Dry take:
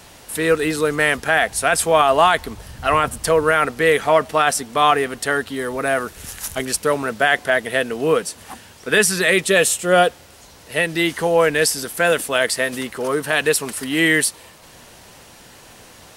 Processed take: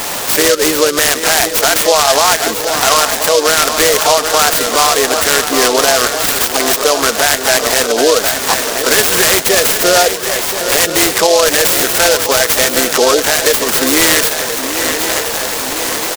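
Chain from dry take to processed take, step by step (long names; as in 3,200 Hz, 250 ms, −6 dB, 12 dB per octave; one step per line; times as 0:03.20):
gain on one half-wave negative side −3 dB
downward compressor 5 to 1, threshold −32 dBFS, peak gain reduction 19.5 dB
high-pass filter 330 Hz 12 dB per octave
feedback echo with a long and a short gap by turns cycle 1,027 ms, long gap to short 3 to 1, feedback 61%, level −11.5 dB
gate on every frequency bin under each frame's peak −20 dB strong
parametric band 1,200 Hz +3.5 dB 1.9 octaves
pitch-shifted copies added +4 semitones −10 dB
parametric band 4,600 Hz +5.5 dB 2.3 octaves
boost into a limiter +22.5 dB
short delay modulated by noise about 4,700 Hz, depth 0.11 ms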